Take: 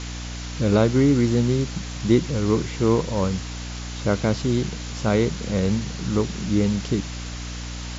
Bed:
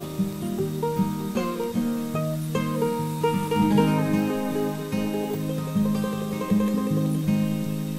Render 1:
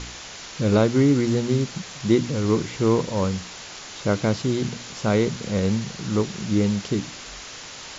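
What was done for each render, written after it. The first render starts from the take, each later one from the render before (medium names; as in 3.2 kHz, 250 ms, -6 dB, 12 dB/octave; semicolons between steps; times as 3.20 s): de-hum 60 Hz, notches 5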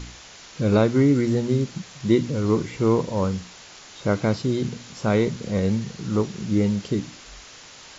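noise print and reduce 6 dB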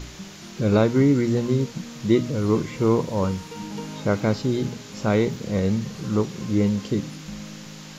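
add bed -14 dB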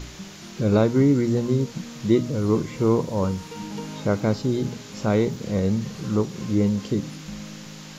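dynamic bell 2.3 kHz, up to -4 dB, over -39 dBFS, Q 0.74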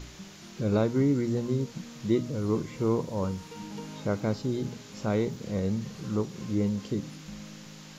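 trim -6.5 dB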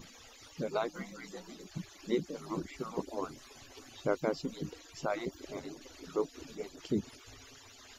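harmonic-percussive separation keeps percussive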